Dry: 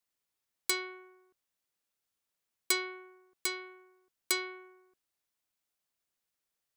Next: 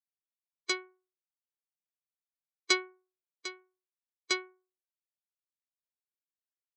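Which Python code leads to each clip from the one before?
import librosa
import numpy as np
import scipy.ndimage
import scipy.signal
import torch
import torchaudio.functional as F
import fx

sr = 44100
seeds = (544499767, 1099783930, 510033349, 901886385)

y = fx.bin_expand(x, sr, power=3.0)
y = scipy.signal.sosfilt(scipy.signal.cheby1(4, 1.0, [140.0, 6500.0], 'bandpass', fs=sr, output='sos'), y)
y = y * librosa.db_to_amplitude(7.5)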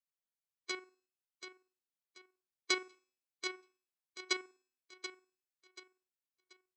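y = fx.level_steps(x, sr, step_db=9)
y = fx.comb_fb(y, sr, f0_hz=260.0, decay_s=0.64, harmonics='all', damping=0.0, mix_pct=40)
y = fx.echo_feedback(y, sr, ms=733, feedback_pct=33, wet_db=-10)
y = y * librosa.db_to_amplitude(2.5)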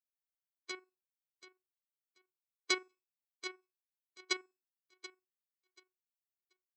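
y = fx.bin_expand(x, sr, power=1.5)
y = y * librosa.db_to_amplitude(1.0)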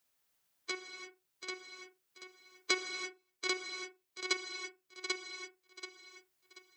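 y = x + 10.0 ** (-4.5 / 20.0) * np.pad(x, (int(790 * sr / 1000.0), 0))[:len(x)]
y = fx.rev_gated(y, sr, seeds[0], gate_ms=370, shape='flat', drr_db=7.0)
y = fx.band_squash(y, sr, depth_pct=40)
y = y * librosa.db_to_amplitude(4.5)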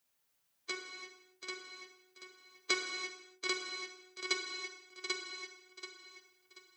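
y = fx.rev_gated(x, sr, seeds[1], gate_ms=320, shape='falling', drr_db=5.0)
y = y * librosa.db_to_amplitude(-1.5)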